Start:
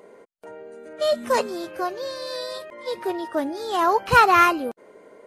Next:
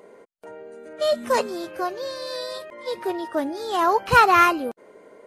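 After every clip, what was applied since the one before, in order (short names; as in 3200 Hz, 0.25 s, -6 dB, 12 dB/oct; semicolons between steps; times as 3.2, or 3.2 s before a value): nothing audible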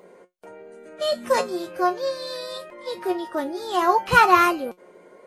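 resonator 180 Hz, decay 0.16 s, harmonics all, mix 80%; gain +7.5 dB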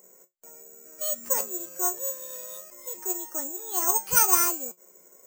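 careless resampling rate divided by 6×, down filtered, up zero stuff; gain -13 dB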